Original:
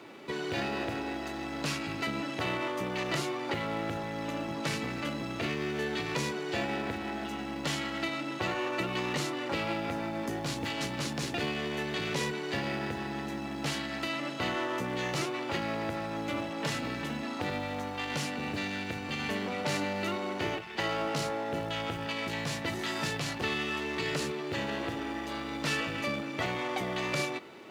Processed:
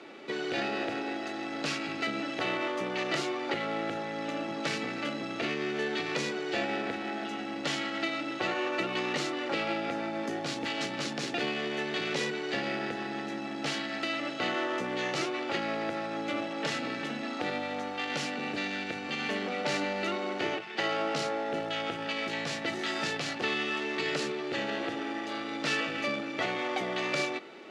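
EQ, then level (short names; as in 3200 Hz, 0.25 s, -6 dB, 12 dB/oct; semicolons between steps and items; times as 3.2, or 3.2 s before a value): HPF 230 Hz 12 dB/oct; LPF 6400 Hz 12 dB/oct; notch 1000 Hz, Q 6.7; +2.0 dB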